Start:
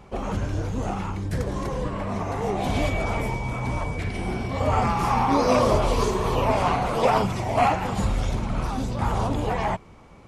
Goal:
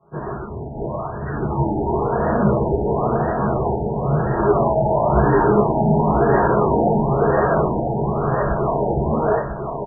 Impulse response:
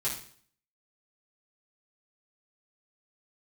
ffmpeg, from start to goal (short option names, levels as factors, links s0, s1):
-filter_complex "[0:a]alimiter=limit=0.168:level=0:latency=1,dynaudnorm=f=580:g=5:m=3.76,asoftclip=type=tanh:threshold=0.0668,aeval=exprs='0.0668*(cos(1*acos(clip(val(0)/0.0668,-1,1)))-cos(1*PI/2))+0.015*(cos(3*acos(clip(val(0)/0.0668,-1,1)))-cos(3*PI/2))+0.00668*(cos(6*acos(clip(val(0)/0.0668,-1,1)))-cos(6*PI/2))+0.000473*(cos(7*acos(clip(val(0)/0.0668,-1,1)))-cos(7*PI/2))+0.00596*(cos(8*acos(clip(val(0)/0.0668,-1,1)))-cos(8*PI/2))':c=same,highpass=f=270:t=q:w=0.5412,highpass=f=270:t=q:w=1.307,lowpass=f=3400:t=q:w=0.5176,lowpass=f=3400:t=q:w=0.7071,lowpass=f=3400:t=q:w=1.932,afreqshift=-220,aecho=1:1:1037|2074|3111|4148:0.473|0.18|0.0683|0.026[s0];[1:a]atrim=start_sample=2205,atrim=end_sample=4410[s1];[s0][s1]afir=irnorm=-1:irlink=0,asetrate=45938,aresample=44100,afftfilt=real='re*lt(b*sr/1024,910*pow(1900/910,0.5+0.5*sin(2*PI*0.98*pts/sr)))':imag='im*lt(b*sr/1024,910*pow(1900/910,0.5+0.5*sin(2*PI*0.98*pts/sr)))':win_size=1024:overlap=0.75,volume=1.5"